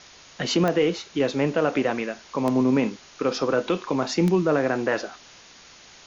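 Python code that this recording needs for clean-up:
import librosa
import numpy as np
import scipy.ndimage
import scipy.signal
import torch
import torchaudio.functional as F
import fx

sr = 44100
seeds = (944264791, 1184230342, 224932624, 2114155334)

y = fx.fix_declick_ar(x, sr, threshold=10.0)
y = fx.noise_reduce(y, sr, print_start_s=5.41, print_end_s=5.91, reduce_db=20.0)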